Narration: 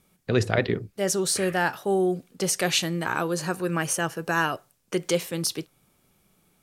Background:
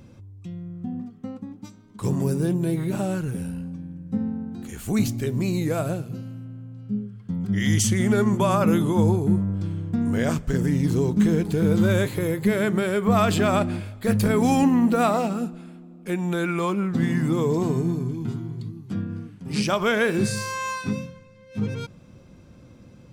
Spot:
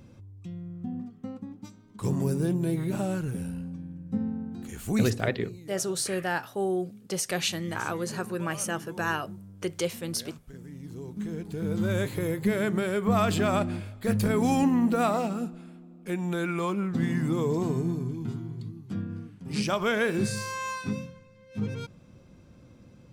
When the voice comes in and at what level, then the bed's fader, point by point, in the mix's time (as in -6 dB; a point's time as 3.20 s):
4.70 s, -5.0 dB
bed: 5.06 s -3.5 dB
5.44 s -22 dB
10.67 s -22 dB
12.13 s -4.5 dB